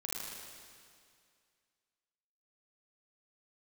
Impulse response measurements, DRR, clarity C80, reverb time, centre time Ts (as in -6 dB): -5.0 dB, 0.0 dB, 2.2 s, 143 ms